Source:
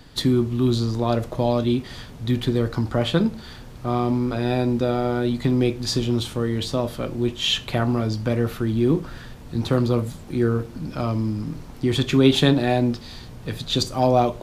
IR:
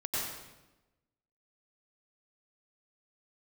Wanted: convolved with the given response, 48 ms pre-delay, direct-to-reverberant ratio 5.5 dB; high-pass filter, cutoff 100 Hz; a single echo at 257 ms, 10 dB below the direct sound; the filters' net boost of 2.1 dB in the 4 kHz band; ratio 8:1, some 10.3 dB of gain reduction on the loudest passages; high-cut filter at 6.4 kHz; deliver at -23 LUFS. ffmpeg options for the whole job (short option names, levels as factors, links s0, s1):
-filter_complex "[0:a]highpass=100,lowpass=6400,equalizer=f=4000:t=o:g=3,acompressor=threshold=0.0891:ratio=8,aecho=1:1:257:0.316,asplit=2[s0][s1];[1:a]atrim=start_sample=2205,adelay=48[s2];[s1][s2]afir=irnorm=-1:irlink=0,volume=0.266[s3];[s0][s3]amix=inputs=2:normalize=0,volume=1.41"